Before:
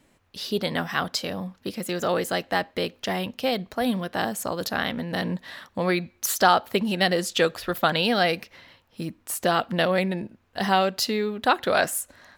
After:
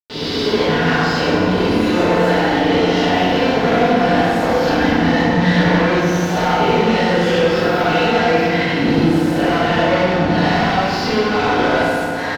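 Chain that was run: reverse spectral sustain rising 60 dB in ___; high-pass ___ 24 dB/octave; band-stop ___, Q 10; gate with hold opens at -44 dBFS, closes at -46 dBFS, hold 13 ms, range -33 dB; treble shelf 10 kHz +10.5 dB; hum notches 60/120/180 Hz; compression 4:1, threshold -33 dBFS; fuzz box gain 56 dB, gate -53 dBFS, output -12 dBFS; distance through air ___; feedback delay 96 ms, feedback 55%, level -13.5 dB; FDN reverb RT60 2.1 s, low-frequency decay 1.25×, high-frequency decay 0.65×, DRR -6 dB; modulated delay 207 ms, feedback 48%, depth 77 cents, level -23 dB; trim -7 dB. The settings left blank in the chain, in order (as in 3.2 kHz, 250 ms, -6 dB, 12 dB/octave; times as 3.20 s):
0.70 s, 93 Hz, 1.2 kHz, 230 m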